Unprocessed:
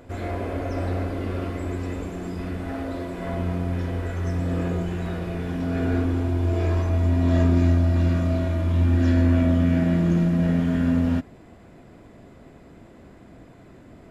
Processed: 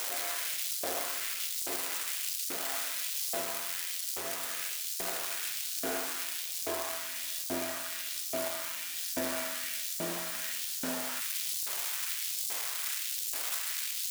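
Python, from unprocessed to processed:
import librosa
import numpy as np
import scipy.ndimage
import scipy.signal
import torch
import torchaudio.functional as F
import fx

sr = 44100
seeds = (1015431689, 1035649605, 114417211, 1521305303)

y = x + 0.5 * 10.0 ** (-16.0 / 20.0) * np.diff(np.sign(x), prepend=np.sign(x[:1]))
y = fx.quant_dither(y, sr, seeds[0], bits=6, dither='triangular')
y = fx.filter_lfo_highpass(y, sr, shape='saw_up', hz=1.2, low_hz=460.0, high_hz=5400.0, q=1.1)
y = F.gain(torch.from_numpy(y), -4.5).numpy()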